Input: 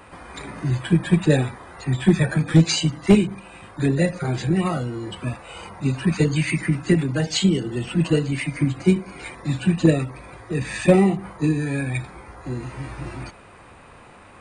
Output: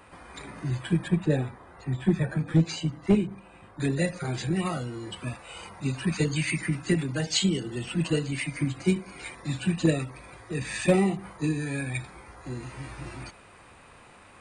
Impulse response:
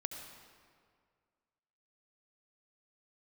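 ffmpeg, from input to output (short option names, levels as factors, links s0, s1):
-af "asetnsamples=n=441:p=0,asendcmd='1.08 highshelf g -8;3.8 highshelf g 6.5',highshelf=f=2100:g=2,volume=0.447"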